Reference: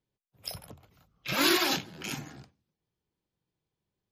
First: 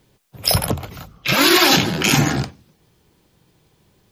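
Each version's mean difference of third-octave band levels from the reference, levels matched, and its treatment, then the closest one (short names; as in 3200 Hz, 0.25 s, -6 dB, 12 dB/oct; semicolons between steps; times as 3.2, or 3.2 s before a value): 8.0 dB: reverse; compressor 6:1, threshold -39 dBFS, peak gain reduction 17.5 dB; reverse; maximiser +28.5 dB; gain -1 dB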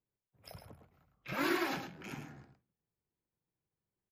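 4.0 dB: band shelf 6200 Hz -11 dB 2.5 oct; echo 0.109 s -8 dB; gain -6.5 dB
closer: second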